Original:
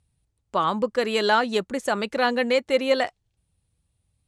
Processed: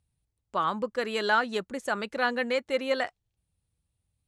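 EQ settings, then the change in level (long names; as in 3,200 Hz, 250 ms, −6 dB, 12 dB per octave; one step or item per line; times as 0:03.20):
dynamic equaliser 1,500 Hz, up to +6 dB, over −35 dBFS, Q 1.7
−7.0 dB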